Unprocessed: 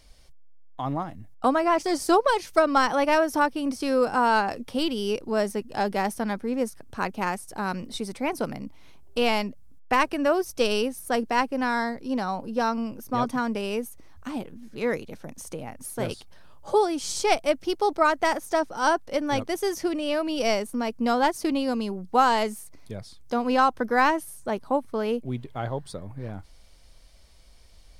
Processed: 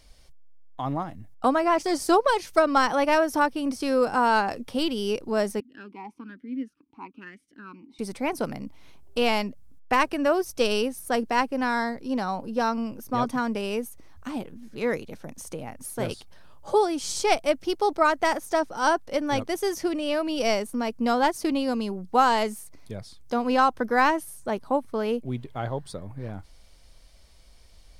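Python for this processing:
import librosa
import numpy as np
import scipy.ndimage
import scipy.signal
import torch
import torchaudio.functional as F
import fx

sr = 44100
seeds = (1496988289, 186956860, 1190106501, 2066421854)

y = fx.vowel_sweep(x, sr, vowels='i-u', hz=1.1, at=(5.6, 7.99))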